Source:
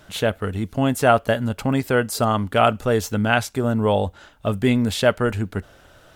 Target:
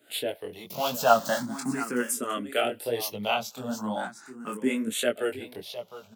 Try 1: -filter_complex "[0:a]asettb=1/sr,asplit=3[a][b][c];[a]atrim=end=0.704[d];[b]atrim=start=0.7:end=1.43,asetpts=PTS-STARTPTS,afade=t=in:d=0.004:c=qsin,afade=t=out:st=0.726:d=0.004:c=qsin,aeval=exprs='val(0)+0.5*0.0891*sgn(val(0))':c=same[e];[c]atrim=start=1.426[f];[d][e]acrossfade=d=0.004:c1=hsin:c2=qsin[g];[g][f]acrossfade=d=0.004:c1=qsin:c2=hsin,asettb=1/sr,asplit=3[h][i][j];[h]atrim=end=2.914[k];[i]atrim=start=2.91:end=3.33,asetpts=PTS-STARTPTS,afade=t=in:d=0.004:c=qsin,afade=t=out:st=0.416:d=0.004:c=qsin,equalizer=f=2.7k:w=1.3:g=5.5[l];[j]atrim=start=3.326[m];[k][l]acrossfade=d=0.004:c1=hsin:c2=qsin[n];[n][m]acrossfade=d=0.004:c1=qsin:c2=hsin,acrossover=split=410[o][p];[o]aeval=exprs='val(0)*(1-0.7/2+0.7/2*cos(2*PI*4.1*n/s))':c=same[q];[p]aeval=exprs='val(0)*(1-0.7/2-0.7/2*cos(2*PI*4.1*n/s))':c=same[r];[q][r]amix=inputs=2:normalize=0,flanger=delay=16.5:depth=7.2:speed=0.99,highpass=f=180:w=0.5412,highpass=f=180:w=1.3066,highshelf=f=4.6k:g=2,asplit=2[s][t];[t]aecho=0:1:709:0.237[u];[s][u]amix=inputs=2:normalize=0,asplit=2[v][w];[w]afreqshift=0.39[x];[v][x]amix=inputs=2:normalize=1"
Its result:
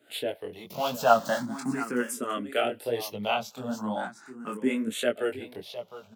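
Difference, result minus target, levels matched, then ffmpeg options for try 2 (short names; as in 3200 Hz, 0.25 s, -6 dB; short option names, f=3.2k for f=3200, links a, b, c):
8000 Hz band -5.0 dB
-filter_complex "[0:a]asettb=1/sr,asplit=3[a][b][c];[a]atrim=end=0.704[d];[b]atrim=start=0.7:end=1.43,asetpts=PTS-STARTPTS,afade=t=in:d=0.004:c=qsin,afade=t=out:st=0.726:d=0.004:c=qsin,aeval=exprs='val(0)+0.5*0.0891*sgn(val(0))':c=same[e];[c]atrim=start=1.426[f];[d][e]acrossfade=d=0.004:c1=hsin:c2=qsin[g];[g][f]acrossfade=d=0.004:c1=qsin:c2=hsin,asettb=1/sr,asplit=3[h][i][j];[h]atrim=end=2.914[k];[i]atrim=start=2.91:end=3.33,asetpts=PTS-STARTPTS,afade=t=in:d=0.004:c=qsin,afade=t=out:st=0.416:d=0.004:c=qsin,equalizer=f=2.7k:w=1.3:g=5.5[l];[j]atrim=start=3.326[m];[k][l]acrossfade=d=0.004:c1=hsin:c2=qsin[n];[n][m]acrossfade=d=0.004:c1=qsin:c2=hsin,acrossover=split=410[o][p];[o]aeval=exprs='val(0)*(1-0.7/2+0.7/2*cos(2*PI*4.1*n/s))':c=same[q];[p]aeval=exprs='val(0)*(1-0.7/2-0.7/2*cos(2*PI*4.1*n/s))':c=same[r];[q][r]amix=inputs=2:normalize=0,flanger=delay=16.5:depth=7.2:speed=0.99,highpass=f=180:w=0.5412,highpass=f=180:w=1.3066,highshelf=f=4.6k:g=9.5,asplit=2[s][t];[t]aecho=0:1:709:0.237[u];[s][u]amix=inputs=2:normalize=0,asplit=2[v][w];[w]afreqshift=0.39[x];[v][x]amix=inputs=2:normalize=1"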